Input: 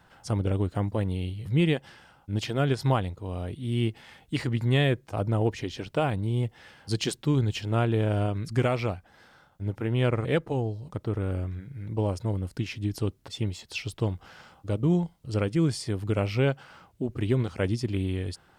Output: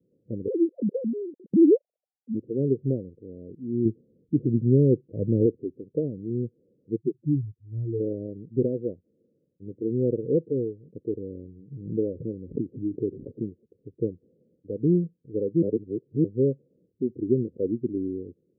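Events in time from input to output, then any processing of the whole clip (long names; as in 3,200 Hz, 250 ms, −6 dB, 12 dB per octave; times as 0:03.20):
0:00.48–0:02.34: three sine waves on the formant tracks
0:03.85–0:05.46: spectral tilt −2 dB per octave
0:06.96–0:08.00: expanding power law on the bin magnitudes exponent 3
0:11.72–0:13.57: background raised ahead of every attack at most 30 dB per second
0:15.62–0:16.24: reverse
whole clip: high-pass filter 210 Hz 12 dB per octave; noise reduction from a noise print of the clip's start 7 dB; Butterworth low-pass 500 Hz 72 dB per octave; level +5.5 dB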